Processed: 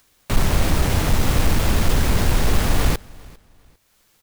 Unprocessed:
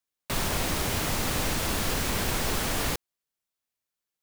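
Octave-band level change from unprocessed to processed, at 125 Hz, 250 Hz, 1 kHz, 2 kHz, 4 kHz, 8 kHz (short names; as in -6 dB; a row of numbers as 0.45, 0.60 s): +12.5, +8.5, +5.0, +4.0, +3.0, +1.5 dB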